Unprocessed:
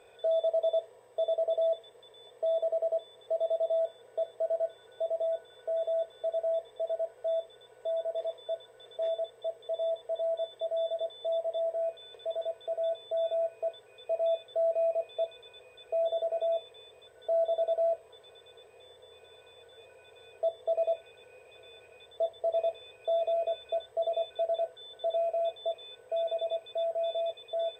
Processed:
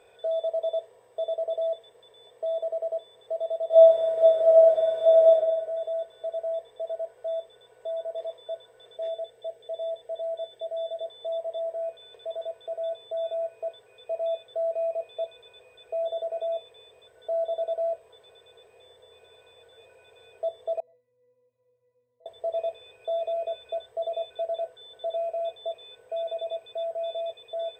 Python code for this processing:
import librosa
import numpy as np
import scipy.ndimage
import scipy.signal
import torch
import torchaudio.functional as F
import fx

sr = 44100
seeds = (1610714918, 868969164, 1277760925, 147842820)

y = fx.reverb_throw(x, sr, start_s=3.67, length_s=1.63, rt60_s=1.3, drr_db=-11.0)
y = fx.peak_eq(y, sr, hz=1100.0, db=-13.0, octaves=0.3, at=(8.95, 11.07))
y = fx.octave_resonator(y, sr, note='B', decay_s=0.6, at=(20.8, 22.26))